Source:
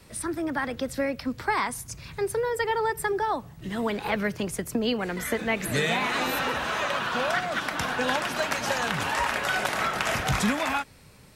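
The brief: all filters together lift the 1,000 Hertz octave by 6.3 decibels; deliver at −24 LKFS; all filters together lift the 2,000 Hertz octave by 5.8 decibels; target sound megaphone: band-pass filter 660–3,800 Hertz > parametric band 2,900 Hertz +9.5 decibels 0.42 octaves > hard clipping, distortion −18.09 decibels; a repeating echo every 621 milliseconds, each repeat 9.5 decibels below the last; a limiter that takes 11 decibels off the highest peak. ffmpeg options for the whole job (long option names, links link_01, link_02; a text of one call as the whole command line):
ffmpeg -i in.wav -af "equalizer=frequency=1000:width_type=o:gain=8,equalizer=frequency=2000:width_type=o:gain=3,alimiter=limit=-15dB:level=0:latency=1,highpass=660,lowpass=3800,equalizer=frequency=2900:width_type=o:width=0.42:gain=9.5,aecho=1:1:621|1242|1863|2484:0.335|0.111|0.0365|0.012,asoftclip=type=hard:threshold=-19dB,volume=1.5dB" out.wav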